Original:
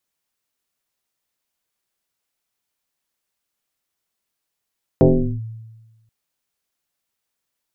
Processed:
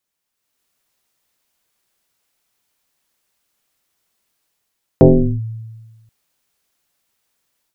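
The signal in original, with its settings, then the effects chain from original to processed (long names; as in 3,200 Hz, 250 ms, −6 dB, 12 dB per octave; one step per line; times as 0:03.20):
two-operator FM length 1.08 s, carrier 112 Hz, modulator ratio 1.2, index 3.7, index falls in 0.40 s linear, decay 1.26 s, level −6.5 dB
automatic gain control gain up to 9 dB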